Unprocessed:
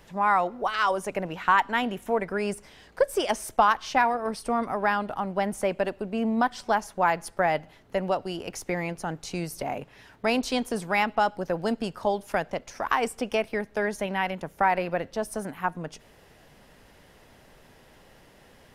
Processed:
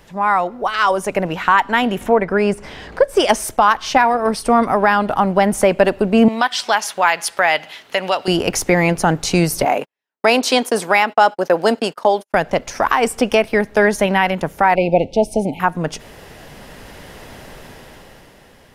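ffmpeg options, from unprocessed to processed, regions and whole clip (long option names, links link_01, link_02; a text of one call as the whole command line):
ffmpeg -i in.wav -filter_complex "[0:a]asettb=1/sr,asplit=3[link_01][link_02][link_03];[link_01]atrim=end=2.014[link_04];[link_02]atrim=start=2.01:end=3.17,asetpts=PTS-STARTPTS,afade=type=in:duration=0.004:curve=qsin,afade=type=out:start_time=1.156:duration=0.004:curve=qsin,lowpass=frequency=2600:poles=1,acompressor=mode=upward:threshold=-37dB:ratio=2.5:attack=3.2:release=140:knee=2.83:detection=peak[link_05];[link_03]atrim=start=3.166[link_06];[link_04][link_05]acrossfade=duration=0.004:curve1=hsin:curve2=qsin[link_07];[link_07][link_06]acrossfade=duration=0.004:curve1=qsin:curve2=hsin,asettb=1/sr,asplit=3[link_08][link_09][link_10];[link_08]atrim=end=6.284[link_11];[link_09]atrim=start=6.28:end=8.28,asetpts=PTS-STARTPTS,afade=type=in:duration=0.004:curve=qsin,afade=type=out:start_time=1.996:duration=0.004:curve=qsin,highpass=frequency=1200:poles=1,equalizer=frequency=3200:width_type=o:width=1.4:gain=7.5,acompressor=threshold=-36dB:ratio=1.5:attack=3.2:release=140:knee=1:detection=peak[link_12];[link_10]atrim=start=8.276[link_13];[link_11][link_12]acrossfade=duration=0.004:curve1=hsin:curve2=qsin[link_14];[link_14][link_13]acrossfade=duration=0.004:curve1=qsin:curve2=hsin,asettb=1/sr,asplit=3[link_15][link_16][link_17];[link_15]atrim=end=9.654[link_18];[link_16]atrim=start=9.65:end=12.34,asetpts=PTS-STARTPTS,afade=type=in:duration=0.004:curve=qsin,afade=type=out:start_time=2.686:duration=0.004:curve=qsin,agate=range=-50dB:threshold=-41dB:ratio=16:release=100:detection=peak,highpass=330[link_19];[link_17]atrim=start=12.336[link_20];[link_18][link_19]acrossfade=duration=0.004:curve1=hsin:curve2=qsin[link_21];[link_21][link_20]acrossfade=duration=0.004:curve1=qsin:curve2=hsin,asettb=1/sr,asplit=3[link_22][link_23][link_24];[link_22]atrim=end=14.754[link_25];[link_23]atrim=start=14.75:end=15.6,asetpts=PTS-STARTPTS,afade=type=in:duration=0.004:curve=qsin,afade=type=out:start_time=0.846:duration=0.004:curve=qsin,asuperstop=centerf=1400:order=20:qfactor=1.1,aemphasis=mode=reproduction:type=50fm[link_26];[link_24]atrim=start=15.596[link_27];[link_25][link_26]acrossfade=duration=0.004:curve1=hsin:curve2=qsin[link_28];[link_28][link_27]acrossfade=duration=0.004:curve1=qsin:curve2=hsin,dynaudnorm=framelen=190:gausssize=11:maxgain=11.5dB,alimiter=limit=-8dB:level=0:latency=1:release=218,volume=6dB" out.wav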